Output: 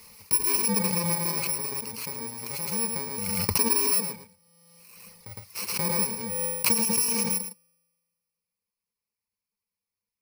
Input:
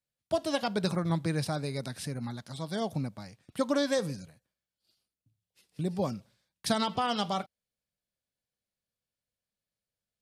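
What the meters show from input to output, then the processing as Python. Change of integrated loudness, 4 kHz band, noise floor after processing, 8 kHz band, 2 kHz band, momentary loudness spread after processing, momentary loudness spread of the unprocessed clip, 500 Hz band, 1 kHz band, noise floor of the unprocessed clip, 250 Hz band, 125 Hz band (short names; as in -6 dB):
+7.5 dB, +5.0 dB, under -85 dBFS, +19.5 dB, +5.0 dB, 13 LU, 11 LU, -3.0 dB, -1.0 dB, under -85 dBFS, -0.5 dB, -1.5 dB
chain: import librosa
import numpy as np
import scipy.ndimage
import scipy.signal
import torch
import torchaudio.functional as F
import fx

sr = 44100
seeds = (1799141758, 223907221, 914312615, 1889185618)

y = fx.bit_reversed(x, sr, seeds[0], block=64)
y = fx.low_shelf(y, sr, hz=180.0, db=-8.0)
y = fx.comb_fb(y, sr, f0_hz=170.0, decay_s=1.6, harmonics='all', damping=0.0, mix_pct=50)
y = fx.dereverb_blind(y, sr, rt60_s=0.61)
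y = fx.ripple_eq(y, sr, per_octave=0.87, db=12)
y = y + 10.0 ** (-9.5 / 20.0) * np.pad(y, (int(110 * sr / 1000.0), 0))[:len(y)]
y = fx.pre_swell(y, sr, db_per_s=27.0)
y = y * 10.0 ** (6.0 / 20.0)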